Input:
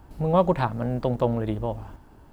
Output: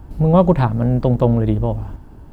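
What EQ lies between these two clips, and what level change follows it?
bass shelf 370 Hz +10.5 dB; +2.5 dB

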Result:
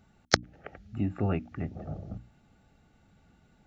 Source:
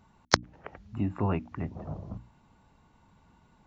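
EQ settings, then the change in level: Butterworth band-stop 1 kHz, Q 2.9; 0.0 dB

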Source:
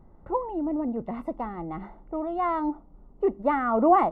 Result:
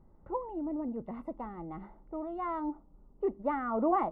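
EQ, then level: treble shelf 2.6 kHz -8 dB; band-stop 710 Hz, Q 14; -7.0 dB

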